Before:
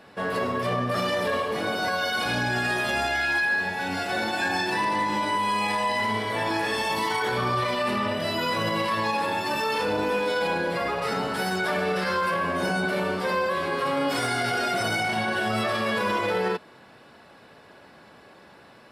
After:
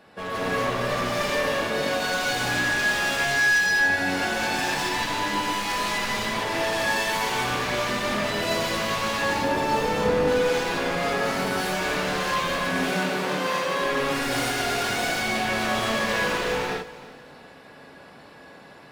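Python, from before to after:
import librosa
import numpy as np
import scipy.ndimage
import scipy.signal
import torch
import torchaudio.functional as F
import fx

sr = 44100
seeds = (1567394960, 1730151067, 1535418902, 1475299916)

y = 10.0 ** (-24.0 / 20.0) * (np.abs((x / 10.0 ** (-24.0 / 20.0) + 3.0) % 4.0 - 2.0) - 1.0)
y = fx.tilt_shelf(y, sr, db=5.5, hz=1200.0, at=(9.22, 10.28))
y = fx.highpass(y, sr, hz=140.0, slope=24, at=(12.63, 13.82))
y = fx.echo_feedback(y, sr, ms=330, feedback_pct=35, wet_db=-18.0)
y = fx.rev_gated(y, sr, seeds[0], gate_ms=280, shape='rising', drr_db=-6.0)
y = y * 10.0 ** (-3.5 / 20.0)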